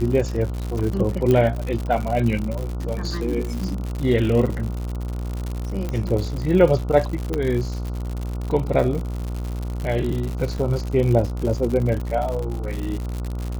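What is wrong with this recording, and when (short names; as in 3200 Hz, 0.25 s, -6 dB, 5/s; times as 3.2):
buzz 60 Hz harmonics 24 -27 dBFS
crackle 120/s -26 dBFS
1.31 pop -9 dBFS
5.89 pop -15 dBFS
7.34 pop -11 dBFS
10.58 gap 4.5 ms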